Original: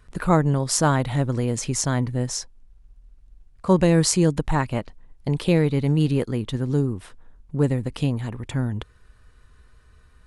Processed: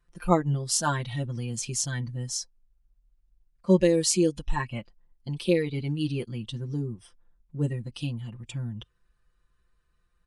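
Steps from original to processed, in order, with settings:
noise reduction from a noise print of the clip's start 14 dB
comb filter 5.8 ms, depth 95%
level −5.5 dB

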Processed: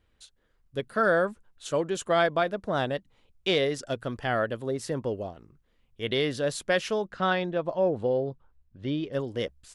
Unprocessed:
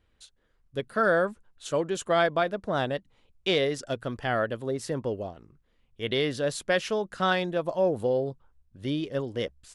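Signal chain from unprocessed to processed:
0:07.07–0:09.13: high-frequency loss of the air 140 metres

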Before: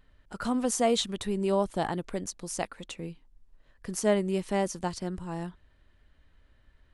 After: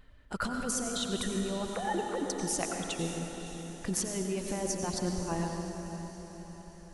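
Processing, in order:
0:01.66–0:02.30: three sine waves on the formant tracks
reverb reduction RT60 1.6 s
compressor whose output falls as the input rises −34 dBFS, ratio −1
feedback delay with all-pass diffusion 562 ms, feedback 50%, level −10 dB
convolution reverb RT60 2.4 s, pre-delay 84 ms, DRR 3 dB

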